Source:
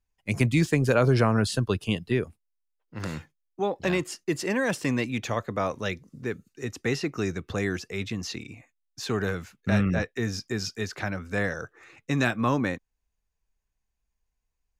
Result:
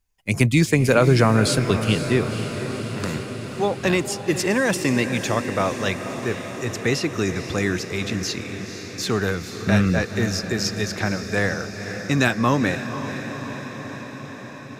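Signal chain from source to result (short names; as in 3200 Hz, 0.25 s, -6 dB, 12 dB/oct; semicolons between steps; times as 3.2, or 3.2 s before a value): high shelf 4600 Hz +5.5 dB; on a send: diffused feedback echo 0.5 s, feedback 72%, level -10 dB; on the sum: gain +5 dB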